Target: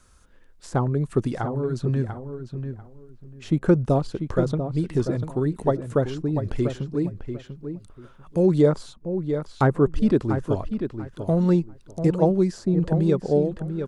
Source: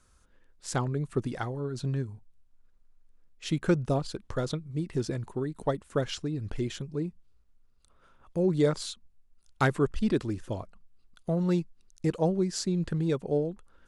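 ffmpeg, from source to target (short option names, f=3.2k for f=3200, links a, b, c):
-filter_complex "[0:a]asplit=2[a][b];[b]adelay=692,lowpass=f=1.3k:p=1,volume=-8dB,asplit=2[c][d];[d]adelay=692,lowpass=f=1.3k:p=1,volume=0.22,asplit=2[e][f];[f]adelay=692,lowpass=f=1.3k:p=1,volume=0.22[g];[a][c][e][g]amix=inputs=4:normalize=0,acrossover=split=1300[h][i];[i]acompressor=threshold=-52dB:ratio=6[j];[h][j]amix=inputs=2:normalize=0,volume=7dB"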